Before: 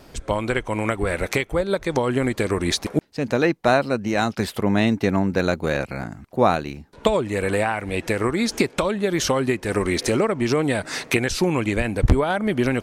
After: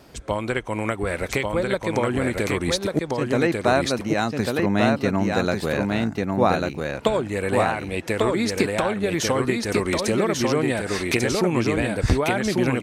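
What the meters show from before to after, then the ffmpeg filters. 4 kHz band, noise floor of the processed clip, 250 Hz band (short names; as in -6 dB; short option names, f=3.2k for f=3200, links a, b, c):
-0.5 dB, -37 dBFS, -0.5 dB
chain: -filter_complex "[0:a]highpass=47,asplit=2[a][b];[b]aecho=0:1:1144:0.708[c];[a][c]amix=inputs=2:normalize=0,volume=-2dB"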